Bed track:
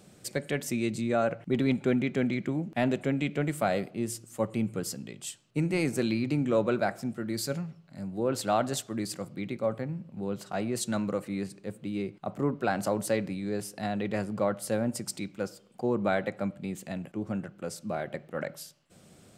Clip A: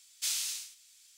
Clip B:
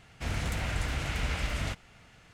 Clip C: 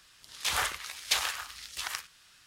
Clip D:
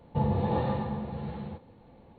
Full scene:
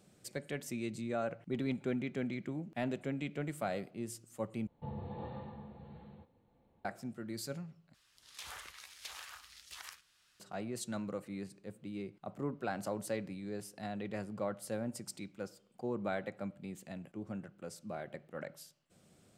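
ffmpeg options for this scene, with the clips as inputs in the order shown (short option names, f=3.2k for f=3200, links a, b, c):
-filter_complex "[0:a]volume=-9.5dB[a];[3:a]acompressor=threshold=-36dB:ratio=4:attack=14:release=99:knee=1:detection=peak[b];[a]asplit=3[c][d][e];[c]atrim=end=4.674[f];[4:a]atrim=end=2.18,asetpts=PTS-STARTPTS,volume=-16dB[g];[d]atrim=start=6.846:end=7.944[h];[b]atrim=end=2.46,asetpts=PTS-STARTPTS,volume=-11.5dB[i];[e]atrim=start=10.396[j];[f][g]acrossfade=d=0.004:c1=hsin:c2=hsin[k];[k][h]acrossfade=d=0.004:c1=hsin:c2=hsin[l];[l][i]acrossfade=d=0.004:c1=hsin:c2=hsin[m];[m][j]acrossfade=d=0.004:c1=hsin:c2=hsin"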